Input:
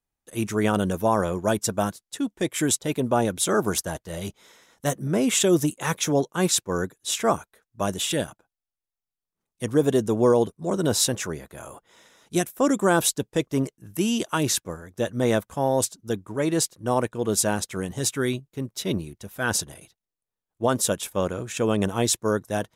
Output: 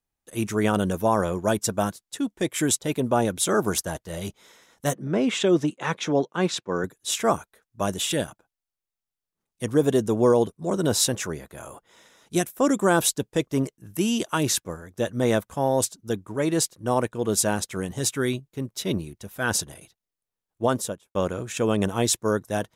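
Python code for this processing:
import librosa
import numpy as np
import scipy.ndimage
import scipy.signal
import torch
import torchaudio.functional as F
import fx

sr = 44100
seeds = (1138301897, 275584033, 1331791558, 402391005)

y = fx.bandpass_edges(x, sr, low_hz=150.0, high_hz=3900.0, at=(4.94, 6.84))
y = fx.studio_fade_out(y, sr, start_s=20.65, length_s=0.5)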